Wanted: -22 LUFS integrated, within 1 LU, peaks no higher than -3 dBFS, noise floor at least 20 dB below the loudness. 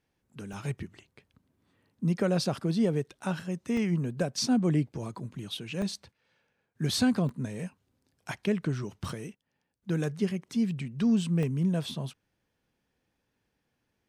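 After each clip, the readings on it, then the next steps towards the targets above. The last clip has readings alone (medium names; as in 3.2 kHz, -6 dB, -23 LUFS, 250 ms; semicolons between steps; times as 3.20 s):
dropouts 6; longest dropout 2.2 ms; loudness -30.5 LUFS; peak level -16.5 dBFS; loudness target -22.0 LUFS
-> interpolate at 0.53/3.77/5.82/7.29/9.09/11.43 s, 2.2 ms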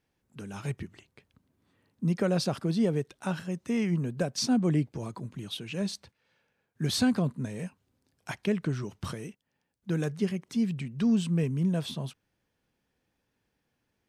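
dropouts 0; loudness -30.5 LUFS; peak level -16.5 dBFS; loudness target -22.0 LUFS
-> trim +8.5 dB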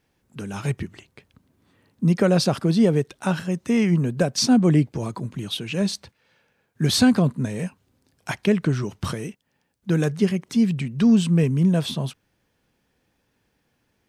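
loudness -22.0 LUFS; peak level -8.0 dBFS; noise floor -71 dBFS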